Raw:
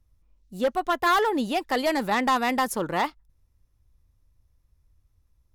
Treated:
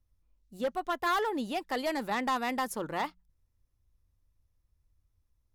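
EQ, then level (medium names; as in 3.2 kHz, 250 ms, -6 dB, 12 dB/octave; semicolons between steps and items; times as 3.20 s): hum notches 60/120/180 Hz; -7.5 dB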